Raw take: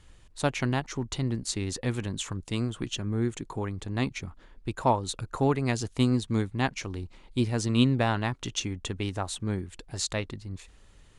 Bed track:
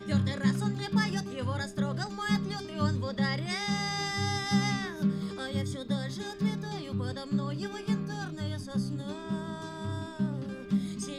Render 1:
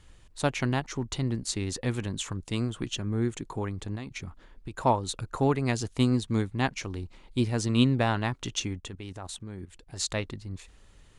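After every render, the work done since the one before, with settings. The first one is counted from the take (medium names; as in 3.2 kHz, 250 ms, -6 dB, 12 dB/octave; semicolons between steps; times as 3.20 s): 3.95–4.78 s: compression 12:1, threshold -32 dBFS; 8.80–10.00 s: level held to a coarse grid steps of 13 dB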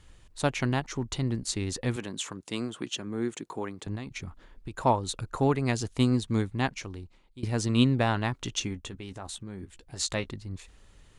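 1.96–3.87 s: high-pass 220 Hz; 6.54–7.43 s: fade out, to -21.5 dB; 8.64–10.31 s: doubling 15 ms -10 dB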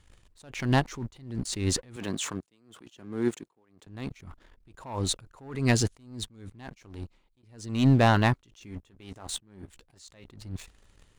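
waveshaping leveller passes 2; attacks held to a fixed rise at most 100 dB/s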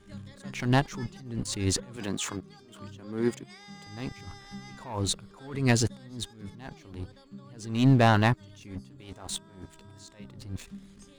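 add bed track -16.5 dB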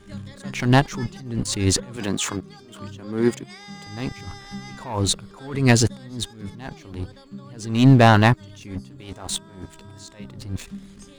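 trim +7.5 dB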